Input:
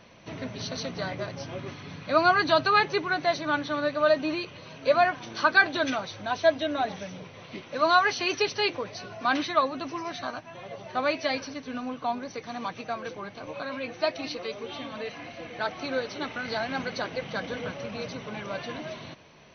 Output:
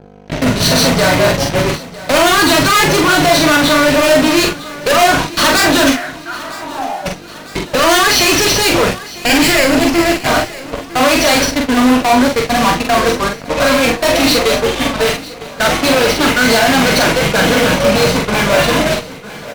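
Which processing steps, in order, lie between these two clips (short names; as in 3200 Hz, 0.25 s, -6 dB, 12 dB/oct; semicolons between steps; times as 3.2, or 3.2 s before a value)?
8.86–10.27 minimum comb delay 0.41 ms; gate -35 dBFS, range -35 dB; in parallel at -1 dB: compressor 6:1, threshold -32 dBFS, peak gain reduction 17 dB; on the sum: wrapped overs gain 11 dB; hum 50 Hz, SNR 21 dB; fuzz box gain 42 dB, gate -44 dBFS; 5.91–7.05 band-pass 1900 Hz -> 720 Hz, Q 7.7; doubler 44 ms -4 dB; feedback echo 0.954 s, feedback 59%, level -18 dB; on a send at -9 dB: reverb, pre-delay 3 ms; on the sum: gain +2 dB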